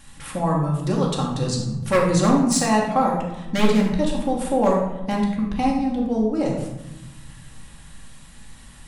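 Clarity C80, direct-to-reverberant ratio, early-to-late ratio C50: 6.5 dB, -2.5 dB, 3.5 dB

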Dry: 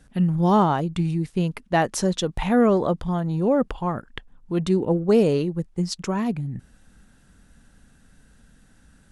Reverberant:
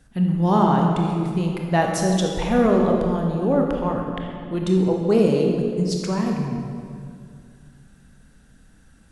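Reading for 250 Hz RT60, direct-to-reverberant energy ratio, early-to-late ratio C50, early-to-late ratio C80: 2.8 s, 0.5 dB, 2.0 dB, 3.5 dB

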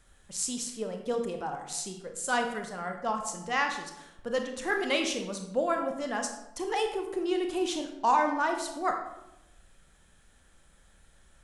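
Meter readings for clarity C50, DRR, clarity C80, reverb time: 6.5 dB, 4.0 dB, 9.0 dB, 0.90 s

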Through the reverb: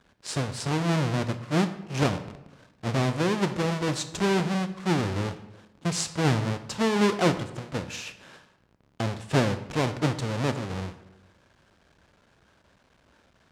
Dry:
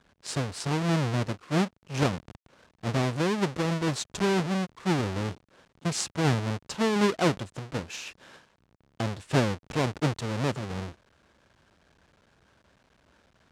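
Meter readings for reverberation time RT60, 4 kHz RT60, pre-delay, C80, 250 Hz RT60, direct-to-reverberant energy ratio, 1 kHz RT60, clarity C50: 1.0 s, 0.65 s, 14 ms, 14.0 dB, 1.2 s, 9.5 dB, 0.95 s, 12.0 dB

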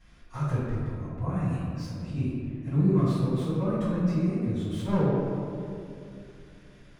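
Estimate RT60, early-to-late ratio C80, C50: 2.6 s, -0.5 dB, -2.5 dB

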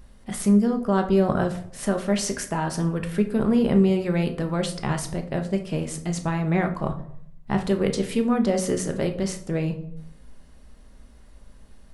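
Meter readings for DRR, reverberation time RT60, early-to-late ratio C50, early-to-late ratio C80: 4.5 dB, 0.70 s, 11.5 dB, 16.0 dB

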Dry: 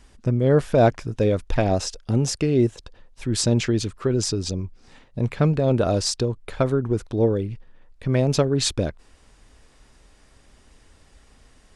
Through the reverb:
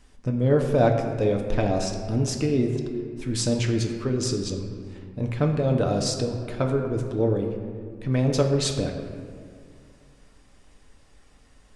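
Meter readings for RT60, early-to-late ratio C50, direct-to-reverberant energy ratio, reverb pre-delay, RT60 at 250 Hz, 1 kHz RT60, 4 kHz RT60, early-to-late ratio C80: 2.1 s, 5.5 dB, 2.0 dB, 4 ms, 2.6 s, 1.9 s, 1.2 s, 6.5 dB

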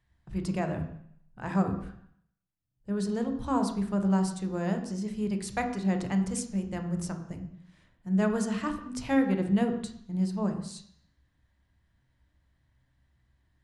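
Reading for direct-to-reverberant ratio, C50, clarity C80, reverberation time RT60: 5.0 dB, 9.0 dB, 11.5 dB, 0.65 s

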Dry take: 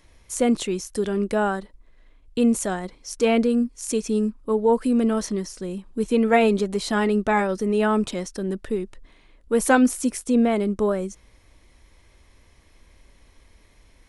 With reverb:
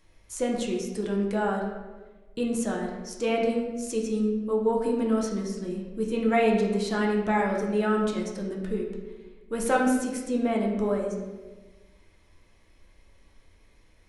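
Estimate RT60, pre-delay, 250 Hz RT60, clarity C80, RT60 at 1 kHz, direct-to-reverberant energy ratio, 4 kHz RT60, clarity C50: 1.3 s, 5 ms, 1.5 s, 6.0 dB, 1.1 s, -1.5 dB, 0.80 s, 4.0 dB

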